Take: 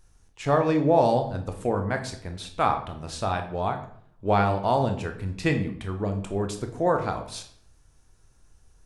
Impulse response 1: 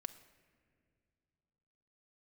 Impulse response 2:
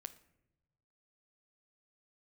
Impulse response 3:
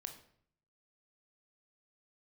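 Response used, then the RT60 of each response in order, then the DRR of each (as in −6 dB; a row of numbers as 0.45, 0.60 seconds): 3; non-exponential decay, non-exponential decay, 0.60 s; 9.5, 10.0, 5.5 decibels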